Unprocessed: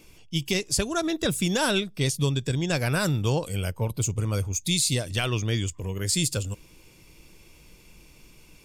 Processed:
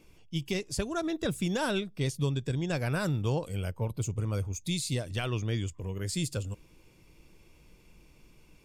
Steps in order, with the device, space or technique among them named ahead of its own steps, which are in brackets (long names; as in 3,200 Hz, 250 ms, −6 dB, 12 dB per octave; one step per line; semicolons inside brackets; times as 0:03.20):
behind a face mask (high-shelf EQ 2,600 Hz −8 dB)
level −4.5 dB